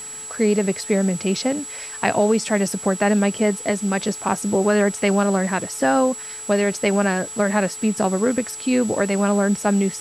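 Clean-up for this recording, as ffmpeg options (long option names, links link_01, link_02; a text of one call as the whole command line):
ffmpeg -i in.wav -af "adeclick=threshold=4,bandreject=frequency=431.8:width_type=h:width=4,bandreject=frequency=863.6:width_type=h:width=4,bandreject=frequency=1295.4:width_type=h:width=4,bandreject=frequency=7800:width=30,afwtdn=0.0089" out.wav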